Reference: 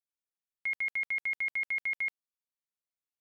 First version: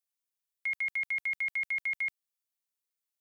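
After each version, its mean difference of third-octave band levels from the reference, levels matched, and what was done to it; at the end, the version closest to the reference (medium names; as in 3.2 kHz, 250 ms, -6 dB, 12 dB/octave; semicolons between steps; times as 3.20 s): 2.5 dB: tilt EQ +2.5 dB/octave; trim -2.5 dB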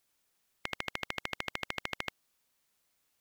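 21.5 dB: spectrum-flattening compressor 10:1; trim +10.5 dB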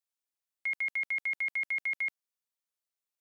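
1.5 dB: tone controls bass -13 dB, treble +3 dB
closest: third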